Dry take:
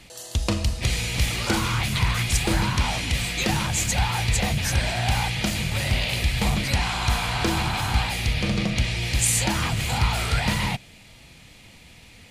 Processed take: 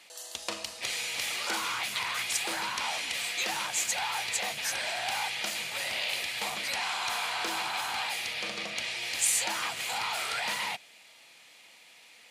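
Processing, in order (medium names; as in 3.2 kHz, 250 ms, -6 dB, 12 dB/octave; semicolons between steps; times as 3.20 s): high-pass 620 Hz 12 dB/octave; transformer saturation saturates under 2.6 kHz; trim -4 dB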